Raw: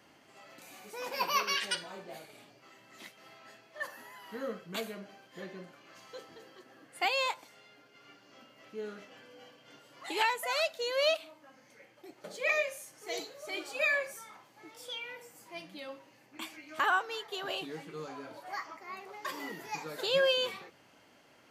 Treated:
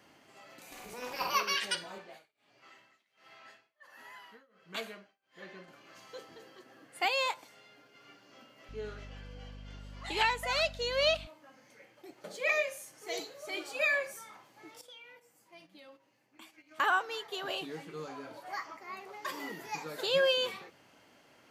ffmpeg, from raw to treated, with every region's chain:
ffmpeg -i in.wav -filter_complex "[0:a]asettb=1/sr,asplit=3[link_01][link_02][link_03];[link_01]atrim=end=0.724[link_04];[link_02]atrim=start=0.72:end=1.35,asetpts=PTS-STARTPTS,afade=type=in:duration=0.004:curve=qsin,afade=type=out:start_time=0.626:duration=0.004:curve=qsin,asplit=2[link_05][link_06];[link_06]adelay=48,volume=-3.5dB[link_07];[link_05][link_07]amix=inputs=2:normalize=0,atrim=end_sample=27783,acompressor=mode=upward:threshold=-36dB:ratio=2.5:attack=3.2:release=140:knee=2.83:detection=peak,tremolo=f=250:d=0.857[link_08];[link_03]atrim=start=1.346[link_09];[link_04][link_08]acrossfade=duration=0.004:curve1=hsin:curve2=qsin[link_10];[link_10][link_09]acrossfade=duration=0.004:curve1=qsin:curve2=hsin,asettb=1/sr,asplit=3[link_11][link_12][link_13];[link_11]atrim=end=1.984[link_14];[link_12]atrim=start=1.98:end=5.68,asetpts=PTS-STARTPTS,afade=type=in:duration=0.004:curve=qsin,afade=type=out:start_time=3.696:duration=0.004:curve=qsin,lowpass=frequency=2100:poles=1,tiltshelf=frequency=860:gain=-7,tremolo=f=1.4:d=0.98[link_15];[link_13]atrim=start=5.676[link_16];[link_14][link_15]acrossfade=duration=0.004:curve1=hsin:curve2=qsin[link_17];[link_17][link_16]acrossfade=duration=0.004:curve1=qsin:curve2=hsin,asettb=1/sr,asplit=3[link_18][link_19][link_20];[link_18]atrim=end=8.694[link_21];[link_19]atrim=start=8.69:end=11.27,asetpts=PTS-STARTPTS,afade=type=in:duration=0.004:curve=qsin,afade=type=out:start_time=2.576:duration=0.004:curve=qsin,highpass=280,lowpass=4600,aemphasis=mode=production:type=50fm,aeval=exprs='val(0)+0.00501*(sin(2*PI*50*n/s)+sin(2*PI*2*50*n/s)/2+sin(2*PI*3*50*n/s)/3+sin(2*PI*4*50*n/s)/4+sin(2*PI*5*50*n/s)/5)':channel_layout=same[link_22];[link_20]atrim=start=11.266[link_23];[link_21][link_22]acrossfade=duration=0.004:curve1=hsin:curve2=qsin[link_24];[link_24][link_23]acrossfade=duration=0.004:curve1=qsin:curve2=hsin,asettb=1/sr,asplit=3[link_25][link_26][link_27];[link_25]atrim=end=14.814[link_28];[link_26]atrim=start=14.81:end=16.8,asetpts=PTS-STARTPTS,afade=type=in:duration=0.004:curve=qsin,afade=type=out:start_time=1.986:duration=0.004:curve=qsin,agate=range=-11dB:threshold=-50dB:ratio=16:release=100:detection=peak,acompressor=threshold=-59dB:ratio=2:attack=3.2:release=140:knee=1:detection=peak[link_29];[link_27]atrim=start=16.796[link_30];[link_28][link_29]acrossfade=duration=0.004:curve1=hsin:curve2=qsin[link_31];[link_31][link_30]acrossfade=duration=0.004:curve1=qsin:curve2=hsin" out.wav

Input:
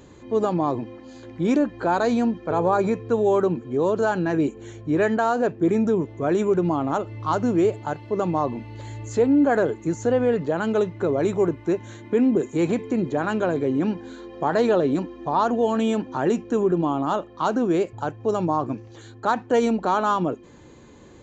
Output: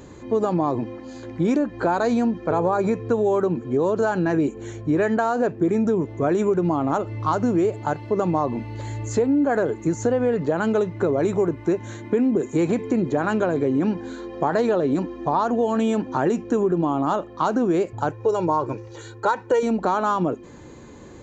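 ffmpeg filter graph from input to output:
ffmpeg -i in.wav -filter_complex "[0:a]asettb=1/sr,asplit=3[link_01][link_02][link_03];[link_01]atrim=end=18.114[link_04];[link_02]atrim=start=18.11:end=19.63,asetpts=PTS-STARTPTS,afade=type=in:duration=0.004:curve=qsin,afade=type=out:start_time=1.516:duration=0.004:curve=qsin,lowshelf=frequency=200:gain=-5.5,aecho=1:1:2.1:0.71,atrim=end_sample=67032[link_05];[link_03]atrim=start=19.626[link_06];[link_04][link_05]acrossfade=duration=0.004:curve1=hsin:curve2=qsin[link_07];[link_07][link_06]acrossfade=duration=0.004:curve1=qsin:curve2=hsin,equalizer=frequency=3200:width_type=o:width=0.72:gain=-4,acompressor=threshold=-22dB:ratio=6,volume=5dB" out.wav

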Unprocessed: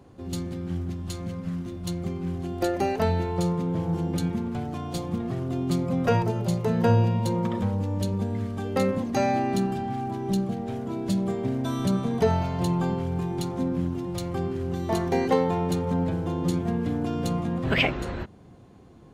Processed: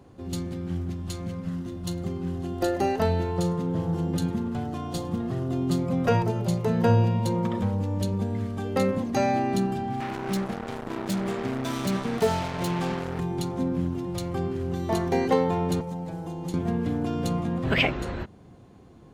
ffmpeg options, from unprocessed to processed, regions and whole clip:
ffmpeg -i in.wav -filter_complex "[0:a]asettb=1/sr,asplit=3[link_01][link_02][link_03];[link_01]atrim=end=1.464[link_04];[link_02]atrim=start=1.46:end=5.79,asetpts=PTS-STARTPTS,afade=type=in:duration=0.004:curve=qsin,afade=type=out:start_time=4.326:duration=0.004:curve=qsin,bandreject=frequency=2300:width=10,asplit=2[link_05][link_06];[link_06]adelay=38,volume=-14dB[link_07];[link_05][link_07]amix=inputs=2:normalize=0,atrim=end_sample=190953,aecho=1:1:104:0.0631,atrim=end_sample=190953[link_08];[link_03]atrim=start=5.786[link_09];[link_04][link_08]acrossfade=duration=0.004:curve1=hsin:curve2=qsin[link_10];[link_10][link_09]acrossfade=duration=0.004:curve1=qsin:curve2=hsin,asettb=1/sr,asplit=3[link_11][link_12][link_13];[link_11]atrim=end=10.004[link_14];[link_12]atrim=start=10:end=13.2,asetpts=PTS-STARTPTS,afade=type=in:duration=0.004:curve=qsin,afade=type=out:start_time=3.196:duration=0.004:curve=qsin,highpass=frequency=200:poles=1,acrusher=bits=4:mix=0:aa=0.5[link_15];[link_13]atrim=start=13.196[link_16];[link_14][link_15]acrossfade=duration=0.004:curve1=hsin:curve2=qsin[link_17];[link_17][link_16]acrossfade=duration=0.004:curve1=qsin:curve2=hsin,asettb=1/sr,asplit=3[link_18][link_19][link_20];[link_18]atrim=end=15.804[link_21];[link_19]atrim=start=15.8:end=16.54,asetpts=PTS-STARTPTS,afade=type=in:duration=0.004:curve=qsin,afade=type=out:start_time=0.736:duration=0.004:curve=qsin,equalizer=frequency=840:width=3.9:gain=8.5,aecho=1:1:6.1:0.58,atrim=end_sample=32634,acrossover=split=84|280|640|5100[link_22][link_23][link_24][link_25][link_26];[link_22]acompressor=threshold=-54dB:ratio=3[link_27];[link_23]acompressor=threshold=-38dB:ratio=3[link_28];[link_24]acompressor=threshold=-45dB:ratio=3[link_29];[link_25]acompressor=threshold=-47dB:ratio=3[link_30];[link_26]acompressor=threshold=-49dB:ratio=3[link_31];[link_27][link_28][link_29][link_30][link_31]amix=inputs=5:normalize=0[link_32];[link_20]atrim=start=16.536[link_33];[link_21][link_32]acrossfade=duration=0.004:curve1=hsin:curve2=qsin[link_34];[link_34][link_33]acrossfade=duration=0.004:curve1=qsin:curve2=hsin" out.wav

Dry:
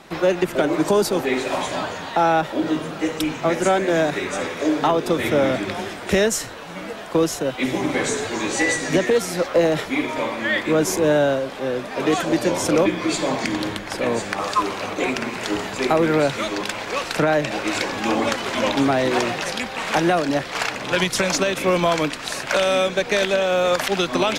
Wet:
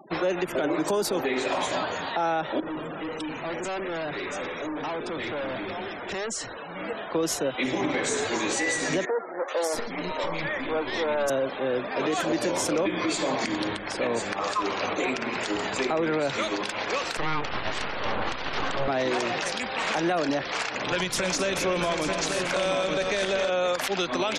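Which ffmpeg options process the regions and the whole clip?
ffmpeg -i in.wav -filter_complex "[0:a]asettb=1/sr,asplit=3[link_01][link_02][link_03];[link_01]atrim=end=2.604[link_04];[link_02]atrim=start=2.6:end=6.8,asetpts=PTS-STARTPTS,afade=type=in:duration=0.004:curve=qsin,afade=type=out:start_time=4.196:duration=0.004:curve=qsin,aeval=exprs='(tanh(28.2*val(0)+0.1)-tanh(0.1))/28.2':channel_layout=same,lowpass=9400[link_05];[link_03]atrim=start=6.796[link_06];[link_04][link_05]acrossfade=duration=0.004:curve1=hsin:curve2=qsin[link_07];[link_07][link_06]acrossfade=duration=0.004:curve1=qsin:curve2=hsin,asettb=1/sr,asplit=3[link_08][link_09][link_10];[link_08]atrim=end=9.054[link_11];[link_09]atrim=start=9.05:end=11.3,asetpts=PTS-STARTPTS,afade=type=in:duration=0.004:curve=qsin,afade=type=out:start_time=2.246:duration=0.004:curve=qsin,aeval=exprs='(tanh(11.2*val(0)+0.65)-tanh(0.65))/11.2':channel_layout=same,acrossover=split=300|2000[link_12][link_13][link_14];[link_14]adelay=430[link_15];[link_12]adelay=690[link_16];[link_16][link_13][link_15]amix=inputs=3:normalize=0,atrim=end_sample=99225[link_17];[link_10]atrim=start=11.296[link_18];[link_11][link_17]acrossfade=duration=0.004:curve1=hsin:curve2=qsin[link_19];[link_19][link_18]acrossfade=duration=0.004:curve1=qsin:curve2=hsin,asettb=1/sr,asplit=3[link_20][link_21][link_22];[link_20]atrim=end=17.174[link_23];[link_21]atrim=start=17.17:end=18.88,asetpts=PTS-STARTPTS,afade=type=in:duration=0.004:curve=qsin,afade=type=out:start_time=1.706:duration=0.004:curve=qsin,aemphasis=mode=reproduction:type=75fm,aeval=exprs='abs(val(0))':channel_layout=same[link_24];[link_22]atrim=start=18.876[link_25];[link_23][link_24]acrossfade=duration=0.004:curve1=hsin:curve2=qsin[link_26];[link_26][link_25]acrossfade=duration=0.004:curve1=qsin:curve2=hsin,asettb=1/sr,asplit=3[link_27][link_28][link_29];[link_27]atrim=end=20.874[link_30];[link_28]atrim=start=20.87:end=23.5,asetpts=PTS-STARTPTS,afade=type=in:duration=0.004:curve=qsin,afade=type=out:start_time=2.626:duration=0.004:curve=qsin,lowshelf=frequency=90:gain=11.5,aecho=1:1:120|260|698|886:0.126|0.335|0.251|0.473,atrim=end_sample=115983[link_31];[link_29]atrim=start=23.496[link_32];[link_30][link_31]acrossfade=duration=0.004:curve1=hsin:curve2=qsin[link_33];[link_33][link_32]acrossfade=duration=0.004:curve1=qsin:curve2=hsin,afftfilt=real='re*gte(hypot(re,im),0.0141)':imag='im*gte(hypot(re,im),0.0141)':win_size=1024:overlap=0.75,bass=frequency=250:gain=-5,treble=frequency=4000:gain=1,alimiter=limit=-17.5dB:level=0:latency=1:release=96" out.wav

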